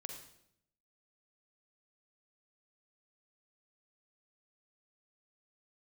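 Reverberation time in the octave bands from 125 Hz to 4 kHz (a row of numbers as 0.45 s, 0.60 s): 0.95 s, 0.95 s, 0.80 s, 0.65 s, 0.65 s, 0.65 s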